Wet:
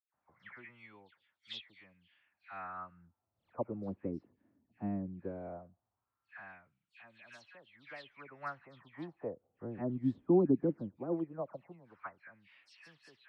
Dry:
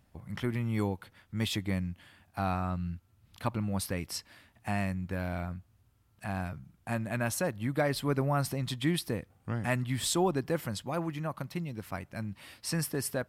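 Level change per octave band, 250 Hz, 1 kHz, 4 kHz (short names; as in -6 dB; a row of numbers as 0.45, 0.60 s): -4.0, -10.5, -15.0 dB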